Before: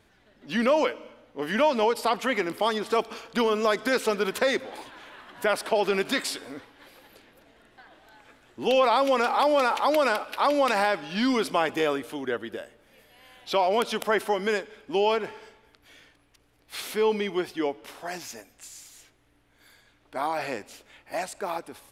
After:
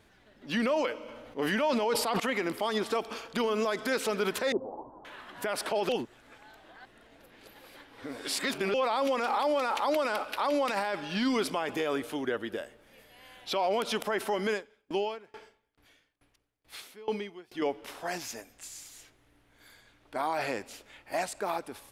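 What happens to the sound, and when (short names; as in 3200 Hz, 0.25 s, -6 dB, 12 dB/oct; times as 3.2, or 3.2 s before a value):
0.98–2.2 sustainer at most 24 dB/s
4.52–5.05 steep low-pass 1000 Hz 48 dB/oct
5.89–8.74 reverse
14.47–17.62 dB-ramp tremolo decaying 2.3 Hz, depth 28 dB
whole clip: limiter -20 dBFS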